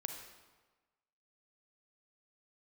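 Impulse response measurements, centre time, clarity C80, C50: 35 ms, 7.0 dB, 5.0 dB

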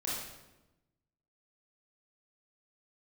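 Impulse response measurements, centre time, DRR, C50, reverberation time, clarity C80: 73 ms, -6.5 dB, -1.0 dB, 1.0 s, 3.0 dB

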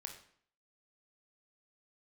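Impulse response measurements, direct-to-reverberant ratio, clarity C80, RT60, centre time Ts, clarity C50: 3.0 dB, 11.5 dB, 0.60 s, 19 ms, 7.5 dB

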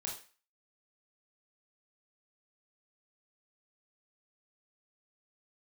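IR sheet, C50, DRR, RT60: 6.0 dB, -2.0 dB, 0.35 s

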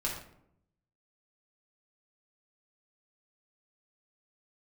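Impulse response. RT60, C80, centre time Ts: 0.70 s, 8.0 dB, 35 ms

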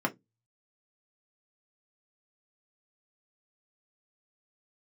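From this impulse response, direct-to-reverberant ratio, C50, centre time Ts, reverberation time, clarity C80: 1.0 dB, 21.5 dB, 6 ms, 0.15 s, 35.0 dB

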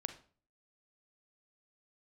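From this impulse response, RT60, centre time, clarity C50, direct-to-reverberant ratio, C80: 0.45 s, 8 ms, 11.5 dB, 8.5 dB, 16.5 dB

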